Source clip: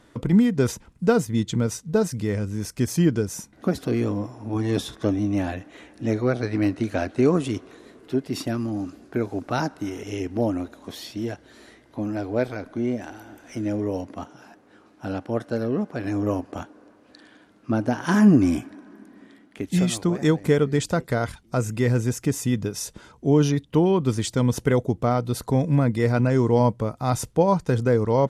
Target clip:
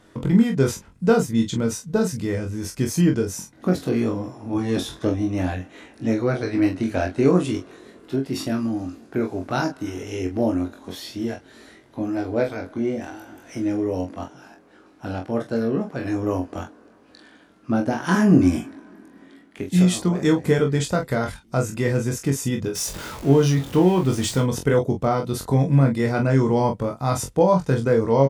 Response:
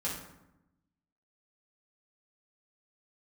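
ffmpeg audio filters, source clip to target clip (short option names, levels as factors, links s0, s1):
-filter_complex "[0:a]asettb=1/sr,asplit=3[s0][s1][s2];[s0]atrim=end=22.754[s3];[s1]atrim=start=22.75:end=24.42,asetpts=PTS-STARTPTS,afade=t=in:d=0.004:c=qsin,afade=t=out:st=1.666:d=0.004:c=qsin,aeval=exprs='val(0)+0.5*0.0251*sgn(val(0))':c=same[s4];[s2]atrim=start=24.416[s5];[s3][s4]acrossfade=d=0.004:c1=hsin:c2=qsin[s6];[s6][s5]acrossfade=d=0.004:c1=qsin:c2=hsin,aecho=1:1:22|44:0.596|0.398"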